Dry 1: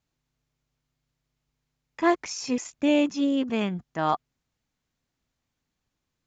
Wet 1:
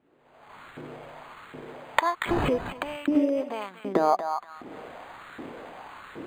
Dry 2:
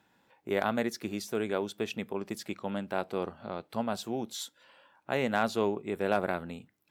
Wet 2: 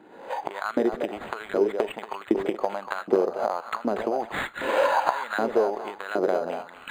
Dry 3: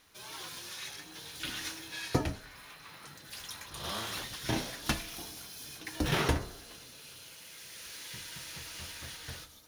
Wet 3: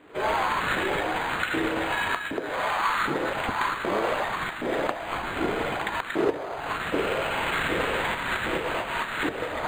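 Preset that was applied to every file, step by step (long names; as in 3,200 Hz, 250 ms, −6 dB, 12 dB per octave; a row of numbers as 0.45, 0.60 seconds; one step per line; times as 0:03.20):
camcorder AGC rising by 52 dB per second
spectral tilt −2.5 dB per octave
downward compressor 6 to 1, threshold −33 dBFS
on a send: tape delay 236 ms, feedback 35%, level −8 dB, low-pass 5,800 Hz
on the sum: auto-filter high-pass saw up 1.3 Hz 310–1,600 Hz
linearly interpolated sample-rate reduction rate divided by 8×
loudness normalisation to −27 LKFS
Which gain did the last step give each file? +12.0, +12.0, +11.0 decibels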